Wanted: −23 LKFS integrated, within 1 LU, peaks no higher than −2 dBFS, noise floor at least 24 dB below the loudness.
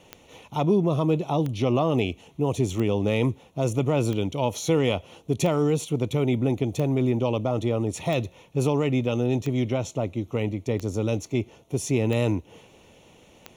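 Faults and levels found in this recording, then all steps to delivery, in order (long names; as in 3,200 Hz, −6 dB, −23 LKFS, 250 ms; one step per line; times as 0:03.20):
number of clicks 11; integrated loudness −25.5 LKFS; sample peak −9.5 dBFS; target loudness −23.0 LKFS
→ click removal
level +2.5 dB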